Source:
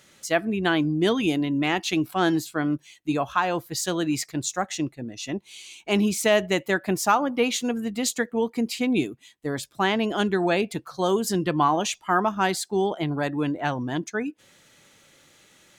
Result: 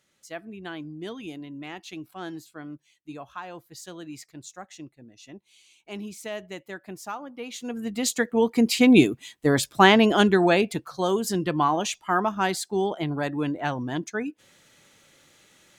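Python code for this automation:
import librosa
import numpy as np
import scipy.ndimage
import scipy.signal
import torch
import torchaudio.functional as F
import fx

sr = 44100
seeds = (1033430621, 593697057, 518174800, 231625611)

y = fx.gain(x, sr, db=fx.line((7.43, -14.5), (7.86, -2.0), (8.89, 8.0), (9.85, 8.0), (11.1, -1.5)))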